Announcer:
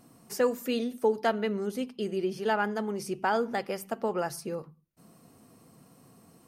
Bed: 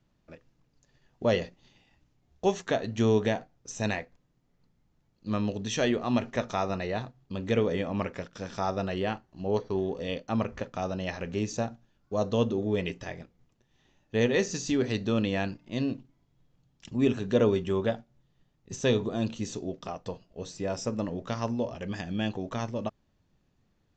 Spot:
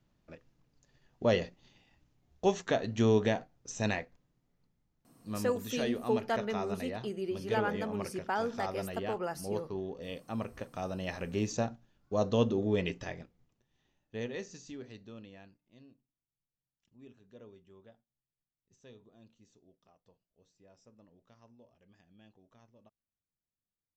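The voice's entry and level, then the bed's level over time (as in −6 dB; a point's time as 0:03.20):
5.05 s, −5.5 dB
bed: 0:04.14 −2 dB
0:04.93 −8.5 dB
0:10.33 −8.5 dB
0:11.47 −1.5 dB
0:13.02 −1.5 dB
0:15.99 −30 dB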